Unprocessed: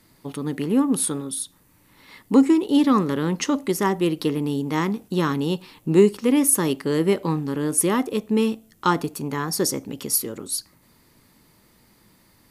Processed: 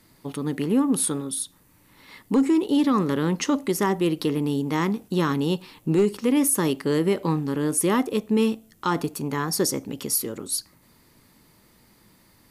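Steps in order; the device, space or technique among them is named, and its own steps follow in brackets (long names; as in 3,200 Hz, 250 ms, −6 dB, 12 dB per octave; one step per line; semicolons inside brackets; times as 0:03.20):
clipper into limiter (hard clipping −8 dBFS, distortion −27 dB; brickwall limiter −13 dBFS, peak gain reduction 5 dB)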